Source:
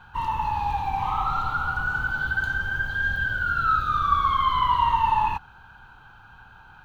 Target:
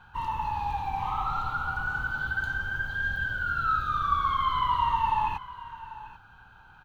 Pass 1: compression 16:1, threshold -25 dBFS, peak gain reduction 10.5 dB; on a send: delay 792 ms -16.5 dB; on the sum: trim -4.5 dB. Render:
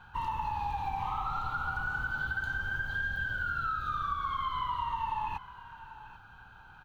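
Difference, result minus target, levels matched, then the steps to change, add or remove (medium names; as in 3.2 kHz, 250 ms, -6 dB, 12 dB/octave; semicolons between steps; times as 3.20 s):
compression: peak gain reduction +10.5 dB
remove: compression 16:1, threshold -25 dBFS, peak gain reduction 10.5 dB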